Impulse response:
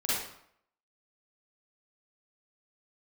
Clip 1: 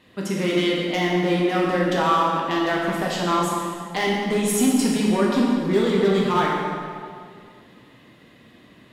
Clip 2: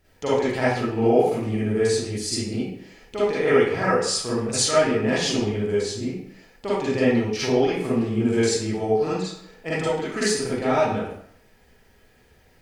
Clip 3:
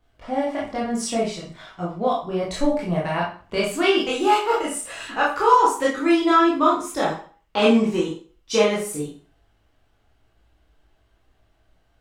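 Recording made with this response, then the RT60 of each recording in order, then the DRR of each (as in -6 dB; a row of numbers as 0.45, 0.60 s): 2; 2.1, 0.70, 0.40 s; -4.0, -9.5, -6.0 dB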